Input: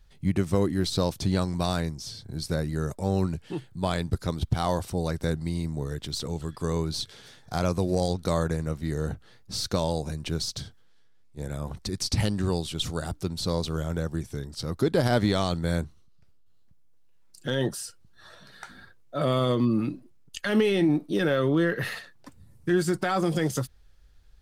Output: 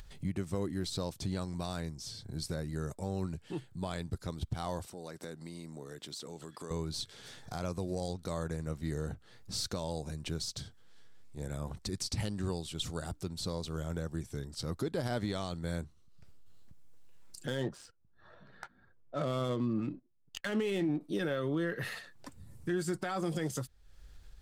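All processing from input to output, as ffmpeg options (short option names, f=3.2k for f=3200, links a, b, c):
-filter_complex "[0:a]asettb=1/sr,asplit=3[a][b][c];[a]atrim=end=4.864[d];[b]atrim=start=4.86:end=6.71,asetpts=PTS-STARTPTS,afade=t=in:d=0.004:c=qsin,afade=t=out:st=1.846:d=0.004:c=qsin,highpass=230,acompressor=threshold=-40dB:ratio=2:attack=3.2:release=140:knee=1:detection=peak[e];[c]atrim=start=6.706[f];[d][e]acrossfade=d=0.004:c1=hsin:c2=qsin[g];[g][f]acrossfade=d=0.004:c1=qsin:c2=hsin,asettb=1/sr,asplit=3[h][i][j];[h]atrim=end=17.474[k];[i]atrim=start=17.47:end=21.01,asetpts=PTS-STARTPTS,afade=t=in:d=0.004:c=qsin,afade=t=out:st=3.536:d=0.004:c=qsin,agate=range=-15dB:threshold=-45dB:ratio=16:release=100:detection=peak,adynamicsmooth=sensitivity=8:basefreq=1.7k[l];[j]atrim=start=21.006[m];[k][l]acrossfade=d=0.004:c1=hsin:c2=qsin[n];[n][m]acrossfade=d=0.004:c1=qsin:c2=hsin,alimiter=limit=-19dB:level=0:latency=1:release=397,equalizer=f=7.7k:t=o:w=0.33:g=4,acompressor=mode=upward:threshold=-35dB:ratio=2.5,volume=-5.5dB"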